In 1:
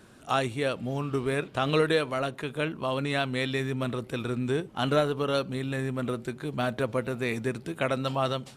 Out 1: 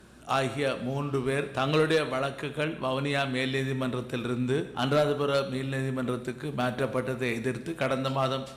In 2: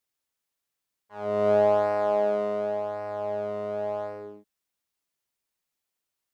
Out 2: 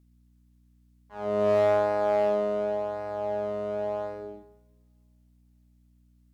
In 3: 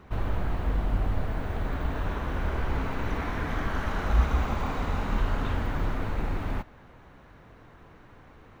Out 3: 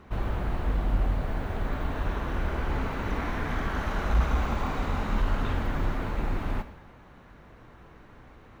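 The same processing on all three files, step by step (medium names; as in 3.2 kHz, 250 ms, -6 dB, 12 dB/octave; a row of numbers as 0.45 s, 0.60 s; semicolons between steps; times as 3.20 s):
hum 60 Hz, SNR 31 dB; two-slope reverb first 0.88 s, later 3 s, from -28 dB, DRR 9.5 dB; one-sided clip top -17.5 dBFS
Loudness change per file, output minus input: +0.5 LU, -0.5 LU, 0.0 LU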